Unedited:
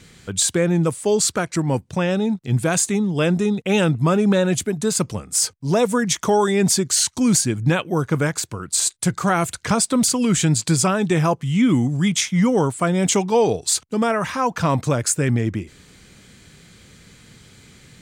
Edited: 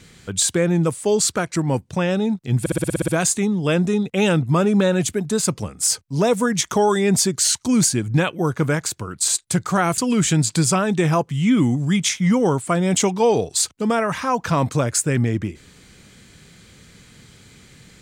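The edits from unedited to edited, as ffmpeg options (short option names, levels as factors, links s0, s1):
-filter_complex "[0:a]asplit=10[s0][s1][s2][s3][s4][s5][s6][s7][s8][s9];[s0]atrim=end=2.662[s10];[s1]atrim=start=2.598:end=2.662[s11];[s2]atrim=start=2.598:end=2.662[s12];[s3]atrim=start=2.598:end=2.662[s13];[s4]atrim=start=2.598:end=2.662[s14];[s5]atrim=start=2.598:end=2.662[s15];[s6]atrim=start=2.598:end=2.662[s16];[s7]atrim=start=2.598:end=2.662[s17];[s8]atrim=start=2.598:end=9.502[s18];[s9]atrim=start=10.098[s19];[s10][s11]acrossfade=d=0.004:c1=hsin:c2=hsin[s20];[s20][s12]acrossfade=d=0.004:c1=hsin:c2=hsin[s21];[s21][s13]acrossfade=d=0.004:c1=hsin:c2=hsin[s22];[s22][s14]acrossfade=d=0.004:c1=hsin:c2=hsin[s23];[s23][s15]acrossfade=d=0.004:c1=hsin:c2=hsin[s24];[s24][s16]acrossfade=d=0.004:c1=hsin:c2=hsin[s25];[s25][s17]acrossfade=d=0.004:c1=hsin:c2=hsin[s26];[s26][s18]acrossfade=d=0.004:c1=hsin:c2=hsin[s27];[s27][s19]acrossfade=d=0.004:c1=hsin:c2=hsin"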